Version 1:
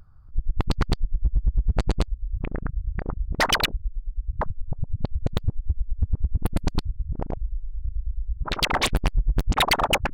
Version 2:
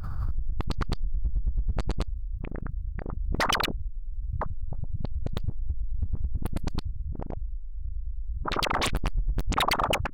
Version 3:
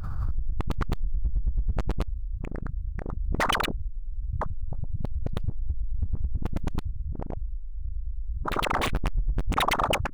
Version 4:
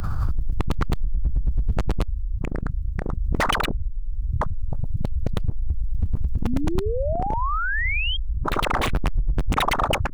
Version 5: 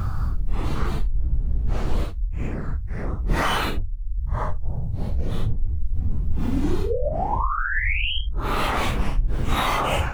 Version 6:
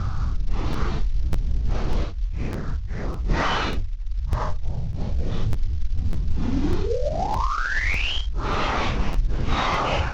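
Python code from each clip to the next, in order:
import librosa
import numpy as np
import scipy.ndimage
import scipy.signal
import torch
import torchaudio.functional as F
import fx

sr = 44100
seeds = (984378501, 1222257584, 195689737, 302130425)

y1 = fx.dynamic_eq(x, sr, hz=1200.0, q=3.3, threshold_db=-40.0, ratio=4.0, max_db=5)
y1 = fx.pre_swell(y1, sr, db_per_s=24.0)
y1 = F.gain(torch.from_numpy(y1), -6.5).numpy()
y2 = scipy.ndimage.median_filter(y1, 9, mode='constant')
y2 = F.gain(torch.from_numpy(y2), 1.0).numpy()
y3 = fx.spec_paint(y2, sr, seeds[0], shape='rise', start_s=6.44, length_s=1.73, low_hz=220.0, high_hz=3300.0, level_db=-32.0)
y3 = fx.band_squash(y3, sr, depth_pct=40)
y3 = F.gain(torch.from_numpy(y3), 4.5).numpy()
y4 = fx.phase_scramble(y3, sr, seeds[1], window_ms=200)
y4 = fx.end_taper(y4, sr, db_per_s=510.0)
y5 = fx.cvsd(y4, sr, bps=32000)
y5 = fx.buffer_crackle(y5, sr, first_s=0.72, period_s=0.6, block=512, kind='repeat')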